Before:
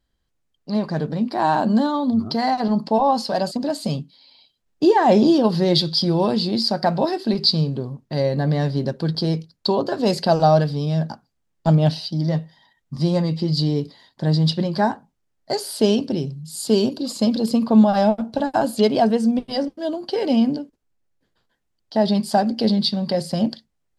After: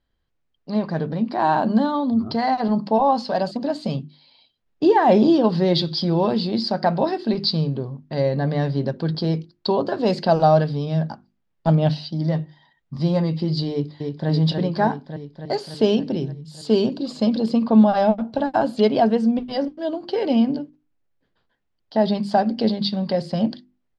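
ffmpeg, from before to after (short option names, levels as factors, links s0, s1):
-filter_complex "[0:a]asplit=2[s0][s1];[s1]afade=t=in:st=13.71:d=0.01,afade=t=out:st=14.29:d=0.01,aecho=0:1:290|580|870|1160|1450|1740|2030|2320|2610|2900|3190|3480:0.630957|0.473218|0.354914|0.266185|0.199639|0.149729|0.112297|0.0842226|0.063167|0.0473752|0.0355314|0.0266486[s2];[s0][s2]amix=inputs=2:normalize=0,lowpass=3800,bandreject=f=50:t=h:w=6,bandreject=f=100:t=h:w=6,bandreject=f=150:t=h:w=6,bandreject=f=200:t=h:w=6,bandreject=f=250:t=h:w=6,bandreject=f=300:t=h:w=6,bandreject=f=350:t=h:w=6"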